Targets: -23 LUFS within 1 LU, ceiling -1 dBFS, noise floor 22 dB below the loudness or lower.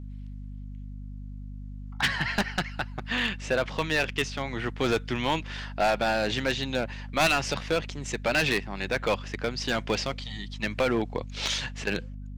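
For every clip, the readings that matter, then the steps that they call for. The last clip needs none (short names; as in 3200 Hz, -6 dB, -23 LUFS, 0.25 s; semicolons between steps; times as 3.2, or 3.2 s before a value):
clipped 1.1%; flat tops at -18.5 dBFS; hum 50 Hz; harmonics up to 250 Hz; hum level -36 dBFS; loudness -28.0 LUFS; peak -18.5 dBFS; loudness target -23.0 LUFS
-> clip repair -18.5 dBFS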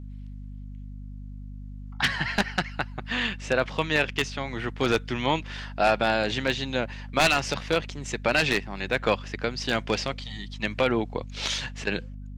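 clipped 0.0%; hum 50 Hz; harmonics up to 250 Hz; hum level -36 dBFS
-> de-hum 50 Hz, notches 5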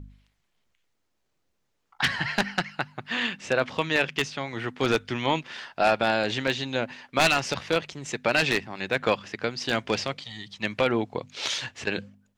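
hum none; loudness -27.0 LUFS; peak -9.0 dBFS; loudness target -23.0 LUFS
-> gain +4 dB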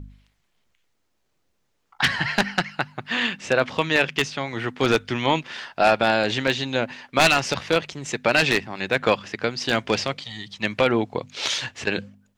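loudness -23.0 LUFS; peak -5.0 dBFS; noise floor -71 dBFS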